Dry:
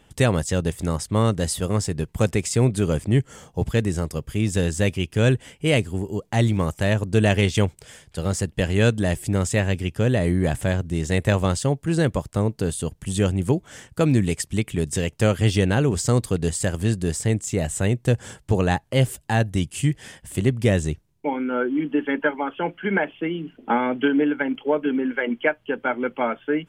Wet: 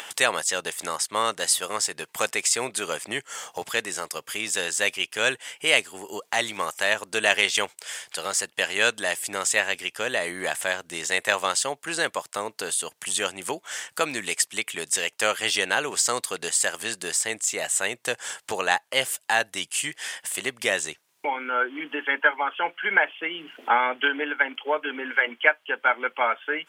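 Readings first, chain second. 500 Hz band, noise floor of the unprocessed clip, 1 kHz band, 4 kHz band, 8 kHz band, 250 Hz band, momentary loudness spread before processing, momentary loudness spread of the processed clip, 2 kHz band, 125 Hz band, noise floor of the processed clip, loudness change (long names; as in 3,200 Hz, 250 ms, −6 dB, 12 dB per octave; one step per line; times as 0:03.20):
−6.0 dB, −59 dBFS, +2.5 dB, +6.0 dB, +6.0 dB, −16.5 dB, 7 LU, 9 LU, +5.5 dB, −29.0 dB, −65 dBFS, −2.0 dB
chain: high-pass filter 980 Hz 12 dB per octave
upward compression, threshold −32 dBFS
level +6 dB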